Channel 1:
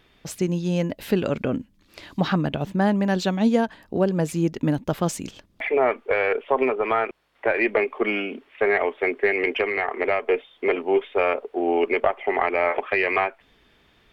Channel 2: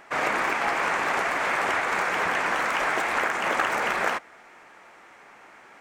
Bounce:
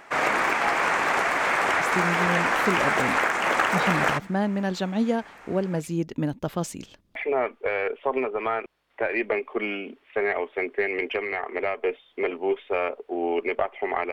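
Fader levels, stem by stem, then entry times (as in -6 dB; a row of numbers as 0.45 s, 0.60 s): -4.5 dB, +2.0 dB; 1.55 s, 0.00 s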